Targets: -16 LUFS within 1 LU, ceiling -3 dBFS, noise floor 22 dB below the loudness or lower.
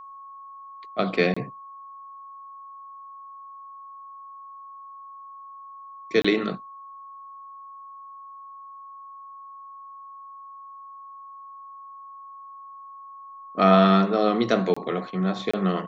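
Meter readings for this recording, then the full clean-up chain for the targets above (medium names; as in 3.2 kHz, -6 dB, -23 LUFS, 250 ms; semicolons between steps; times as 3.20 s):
dropouts 4; longest dropout 25 ms; steady tone 1.1 kHz; tone level -40 dBFS; loudness -23.0 LUFS; peak level -5.5 dBFS; loudness target -16.0 LUFS
-> interpolate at 1.34/6.22/14.74/15.51 s, 25 ms; band-stop 1.1 kHz, Q 30; trim +7 dB; peak limiter -3 dBFS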